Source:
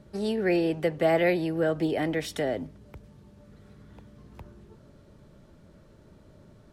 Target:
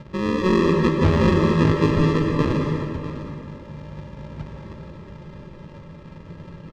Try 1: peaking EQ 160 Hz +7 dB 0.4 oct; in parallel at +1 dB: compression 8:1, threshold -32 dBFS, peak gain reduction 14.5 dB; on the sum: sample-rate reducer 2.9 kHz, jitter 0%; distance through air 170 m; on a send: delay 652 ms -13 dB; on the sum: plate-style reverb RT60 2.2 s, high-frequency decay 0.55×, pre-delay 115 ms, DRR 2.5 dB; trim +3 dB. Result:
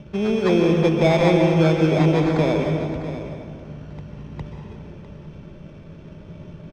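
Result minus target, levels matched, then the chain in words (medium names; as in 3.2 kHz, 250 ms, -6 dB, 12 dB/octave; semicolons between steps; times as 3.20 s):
sample-rate reducer: distortion -19 dB; compression: peak gain reduction -5 dB
peaking EQ 160 Hz +7 dB 0.4 oct; in parallel at +1 dB: compression 8:1, threshold -38 dBFS, peak gain reduction 19.5 dB; on the sum: sample-rate reducer 740 Hz, jitter 0%; distance through air 170 m; on a send: delay 652 ms -13 dB; on the sum: plate-style reverb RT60 2.2 s, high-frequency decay 0.55×, pre-delay 115 ms, DRR 2.5 dB; trim +3 dB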